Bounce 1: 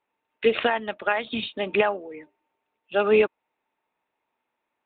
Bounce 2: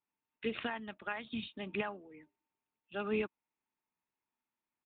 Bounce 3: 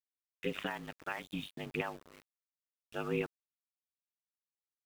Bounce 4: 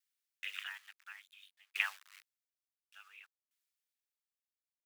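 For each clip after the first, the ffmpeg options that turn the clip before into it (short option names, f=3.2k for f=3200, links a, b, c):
-af "firequalizer=gain_entry='entry(190,0);entry(520,-14);entry(1000,-7)':delay=0.05:min_phase=1,volume=-7dB"
-af "aeval=exprs='val(0)*sin(2*PI*49*n/s)':c=same,aeval=exprs='val(0)*gte(abs(val(0)),0.00266)':c=same,volume=2.5dB"
-af "highpass=f=1.5k:w=0.5412,highpass=f=1.5k:w=1.3066,aeval=exprs='val(0)*pow(10,-28*if(lt(mod(0.57*n/s,1),2*abs(0.57)/1000),1-mod(0.57*n/s,1)/(2*abs(0.57)/1000),(mod(0.57*n/s,1)-2*abs(0.57)/1000)/(1-2*abs(0.57)/1000))/20)':c=same,volume=10dB"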